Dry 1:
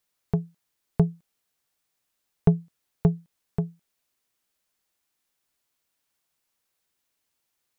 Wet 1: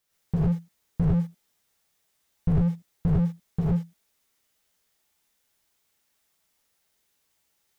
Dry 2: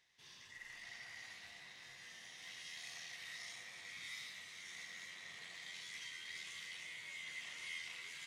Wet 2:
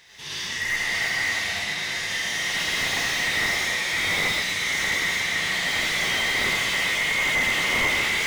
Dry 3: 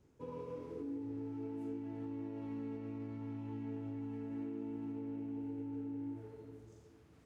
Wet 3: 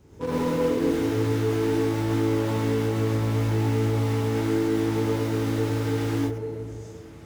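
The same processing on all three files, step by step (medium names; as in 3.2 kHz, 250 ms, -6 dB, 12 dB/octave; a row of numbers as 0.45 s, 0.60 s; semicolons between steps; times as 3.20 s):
in parallel at -9.5 dB: bit crusher 7-bit; on the sum: gated-style reverb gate 150 ms rising, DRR -5 dB; slew-rate limiter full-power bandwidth 17 Hz; peak normalisation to -12 dBFS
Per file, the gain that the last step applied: -0.5 dB, +22.0 dB, +13.0 dB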